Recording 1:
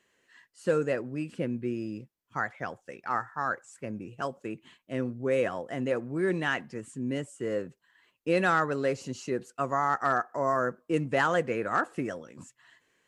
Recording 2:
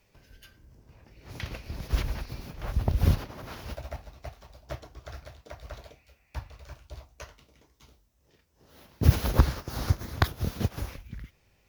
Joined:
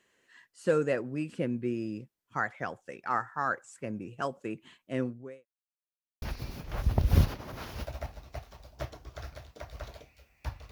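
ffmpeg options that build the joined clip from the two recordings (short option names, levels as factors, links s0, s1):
-filter_complex "[0:a]apad=whole_dur=10.71,atrim=end=10.71,asplit=2[s0][s1];[s0]atrim=end=5.46,asetpts=PTS-STARTPTS,afade=t=out:st=5.03:d=0.43:c=qua[s2];[s1]atrim=start=5.46:end=6.22,asetpts=PTS-STARTPTS,volume=0[s3];[1:a]atrim=start=2.12:end=6.61,asetpts=PTS-STARTPTS,afade=t=in:d=0.004:c=hsin[s4];[s2][s3][s4]concat=n=3:v=0:a=1"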